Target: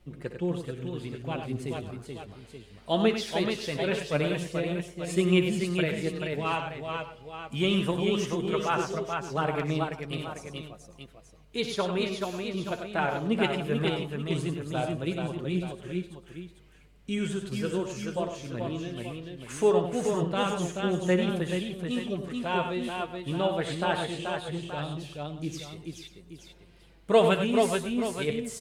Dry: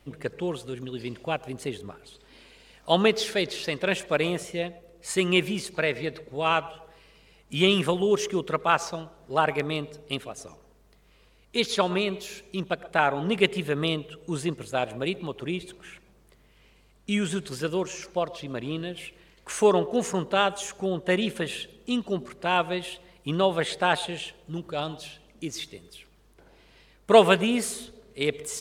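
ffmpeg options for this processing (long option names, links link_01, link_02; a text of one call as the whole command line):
ffmpeg -i in.wav -af "lowshelf=frequency=290:gain=9.5,aecho=1:1:61|96|432|542|879:0.224|0.422|0.596|0.119|0.299,flanger=delay=5.5:depth=3.5:regen=47:speed=0.19:shape=sinusoidal,volume=-3.5dB" out.wav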